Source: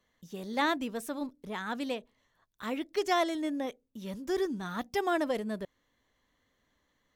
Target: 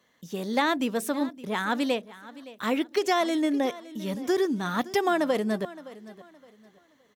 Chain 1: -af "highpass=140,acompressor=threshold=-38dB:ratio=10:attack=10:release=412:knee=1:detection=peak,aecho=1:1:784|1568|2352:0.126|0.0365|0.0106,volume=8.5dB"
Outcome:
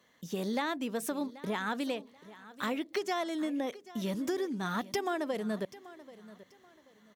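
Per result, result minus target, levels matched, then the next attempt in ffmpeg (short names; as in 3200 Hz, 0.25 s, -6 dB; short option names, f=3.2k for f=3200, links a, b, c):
compressor: peak gain reduction +9 dB; echo 0.217 s late
-af "highpass=140,acompressor=threshold=-28dB:ratio=10:attack=10:release=412:knee=1:detection=peak,aecho=1:1:784|1568|2352:0.126|0.0365|0.0106,volume=8.5dB"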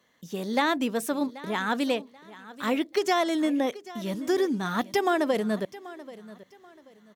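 echo 0.217 s late
-af "highpass=140,acompressor=threshold=-28dB:ratio=10:attack=10:release=412:knee=1:detection=peak,aecho=1:1:567|1134|1701:0.126|0.0365|0.0106,volume=8.5dB"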